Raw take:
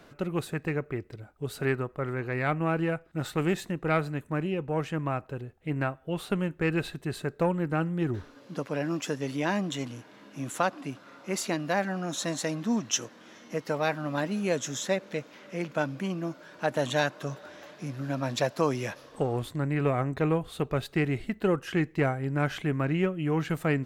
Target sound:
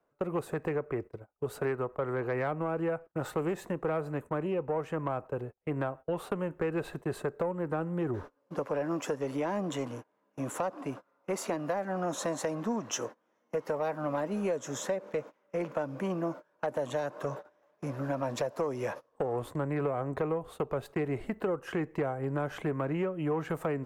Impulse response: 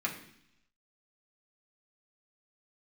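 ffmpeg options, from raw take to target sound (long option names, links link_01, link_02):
-filter_complex "[0:a]agate=range=-27dB:threshold=-41dB:ratio=16:detection=peak,equalizer=frequency=500:width_type=o:width=1:gain=9,equalizer=frequency=1000:width_type=o:width=1:gain=9,equalizer=frequency=4000:width_type=o:width=1:gain=-7,acrossover=split=360|530|3800[link_01][link_02][link_03][link_04];[link_03]alimiter=limit=-17.5dB:level=0:latency=1:release=209[link_05];[link_01][link_02][link_05][link_04]amix=inputs=4:normalize=0,acompressor=threshold=-25dB:ratio=6,asoftclip=type=tanh:threshold=-19dB,volume=-2dB"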